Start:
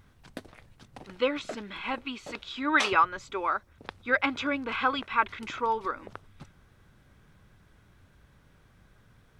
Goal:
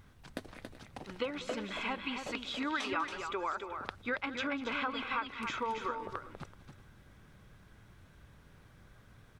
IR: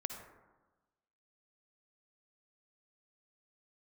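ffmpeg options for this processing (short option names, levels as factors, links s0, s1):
-af "acompressor=threshold=0.0224:ratio=6,aecho=1:1:195|278|380:0.158|0.473|0.126"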